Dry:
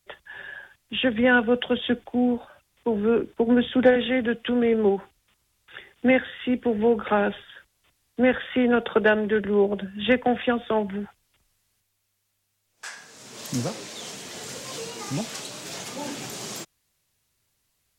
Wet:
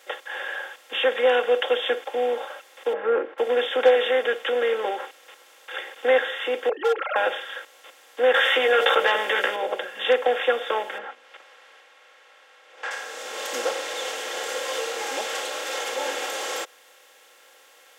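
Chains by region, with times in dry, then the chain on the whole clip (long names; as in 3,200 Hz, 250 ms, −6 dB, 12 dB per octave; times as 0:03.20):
0:02.93–0:03.38: low-pass filter 2,000 Hz 24 dB per octave + spectral tilt −2 dB per octave
0:06.69–0:07.16: three sine waves on the formant tracks + gain into a clipping stage and back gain 15.5 dB
0:08.34–0:09.56: tilt shelving filter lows −5 dB, about 1,100 Hz + double-tracking delay 15 ms −3.5 dB + envelope flattener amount 70%
0:10.98–0:12.91: low-pass filter 2,100 Hz + mains-hum notches 60/120/180/240/300 Hz + one half of a high-frequency compander encoder only
whole clip: compressor on every frequency bin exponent 0.6; elliptic high-pass filter 390 Hz, stop band 80 dB; comb filter 3.7 ms, depth 99%; level −4 dB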